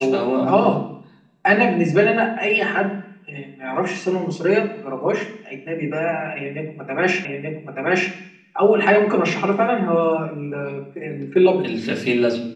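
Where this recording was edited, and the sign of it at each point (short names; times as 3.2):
7.25 repeat of the last 0.88 s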